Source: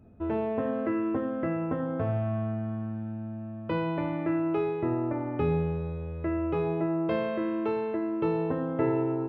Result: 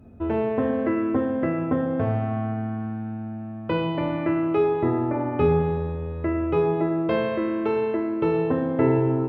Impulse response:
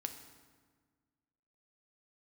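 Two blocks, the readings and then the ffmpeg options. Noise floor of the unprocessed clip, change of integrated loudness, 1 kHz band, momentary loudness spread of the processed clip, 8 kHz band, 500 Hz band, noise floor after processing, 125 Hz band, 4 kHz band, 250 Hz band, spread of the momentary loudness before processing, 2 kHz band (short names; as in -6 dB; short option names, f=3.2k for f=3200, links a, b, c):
-37 dBFS, +5.5 dB, +6.0 dB, 8 LU, n/a, +6.0 dB, -34 dBFS, +5.0 dB, +8.0 dB, +5.0 dB, 6 LU, +6.0 dB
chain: -filter_complex "[1:a]atrim=start_sample=2205,asetrate=39249,aresample=44100[a];[0:a][a]afir=irnorm=-1:irlink=0,volume=7.5dB"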